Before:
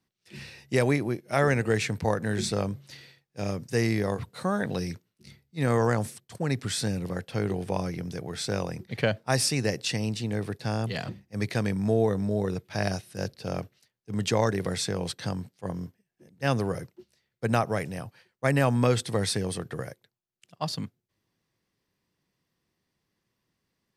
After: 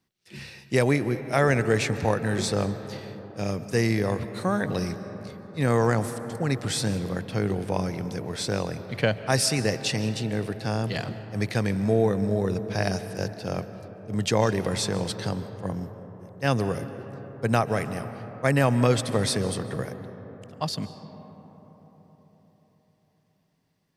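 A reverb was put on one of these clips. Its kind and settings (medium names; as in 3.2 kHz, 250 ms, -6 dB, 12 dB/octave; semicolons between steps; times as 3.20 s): algorithmic reverb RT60 4.8 s, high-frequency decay 0.3×, pre-delay 105 ms, DRR 11.5 dB; trim +2 dB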